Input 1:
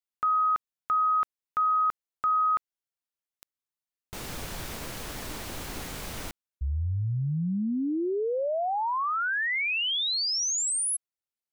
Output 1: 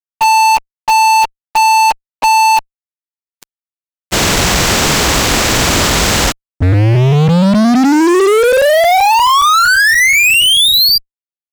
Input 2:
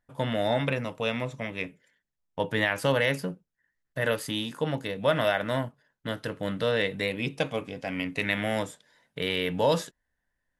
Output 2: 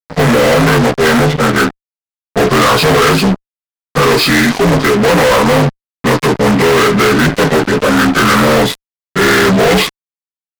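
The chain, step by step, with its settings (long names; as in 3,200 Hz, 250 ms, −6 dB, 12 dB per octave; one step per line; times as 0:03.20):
partials spread apart or drawn together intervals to 78%
fuzz pedal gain 44 dB, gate −46 dBFS
level +5.5 dB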